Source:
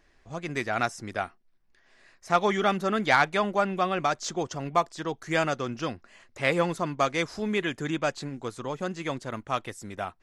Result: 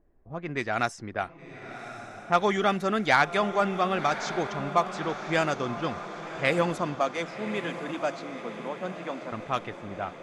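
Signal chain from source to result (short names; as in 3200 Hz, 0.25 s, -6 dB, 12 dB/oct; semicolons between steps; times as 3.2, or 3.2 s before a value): low-pass opened by the level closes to 570 Hz, open at -23 dBFS; 6.95–9.32 rippled Chebyshev high-pass 170 Hz, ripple 6 dB; diffused feedback echo 1.101 s, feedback 58%, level -11 dB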